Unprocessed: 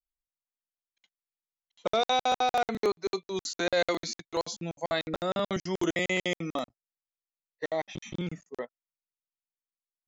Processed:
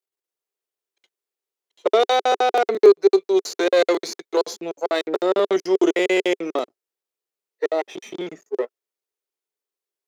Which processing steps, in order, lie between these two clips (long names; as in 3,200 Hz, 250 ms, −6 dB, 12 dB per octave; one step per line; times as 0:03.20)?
gain on one half-wave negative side −7 dB
high-pass with resonance 400 Hz, resonance Q 4.9
level +6.5 dB